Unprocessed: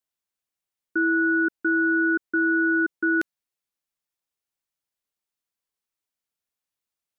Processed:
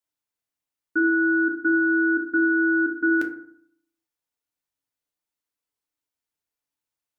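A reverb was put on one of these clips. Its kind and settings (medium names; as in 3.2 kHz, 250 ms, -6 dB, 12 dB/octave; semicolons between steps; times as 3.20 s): FDN reverb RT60 0.62 s, low-frequency decay 1.2×, high-frequency decay 0.4×, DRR 1.5 dB; trim -2.5 dB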